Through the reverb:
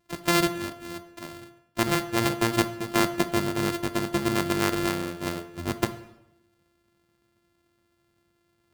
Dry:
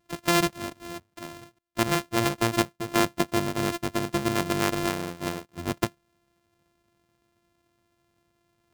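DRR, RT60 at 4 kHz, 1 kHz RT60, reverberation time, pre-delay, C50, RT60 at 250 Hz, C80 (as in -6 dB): 10.0 dB, 0.70 s, 0.85 s, 0.85 s, 4 ms, 13.5 dB, 1.0 s, 16.0 dB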